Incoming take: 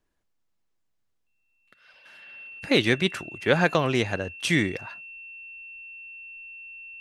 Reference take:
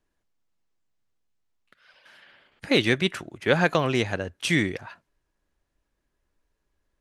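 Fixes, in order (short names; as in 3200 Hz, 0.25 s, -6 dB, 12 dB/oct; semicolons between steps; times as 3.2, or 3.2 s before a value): notch 2700 Hz, Q 30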